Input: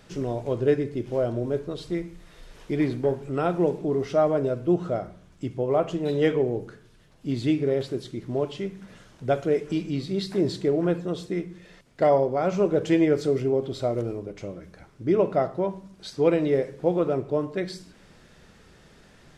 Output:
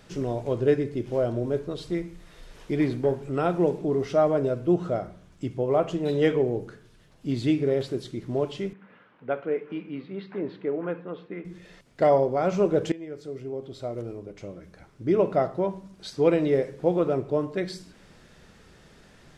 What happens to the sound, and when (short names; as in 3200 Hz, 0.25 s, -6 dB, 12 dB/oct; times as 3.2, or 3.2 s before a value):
8.73–11.45 speaker cabinet 300–2400 Hz, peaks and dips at 360 Hz -8 dB, 650 Hz -8 dB, 1900 Hz -3 dB
12.92–15.32 fade in, from -22 dB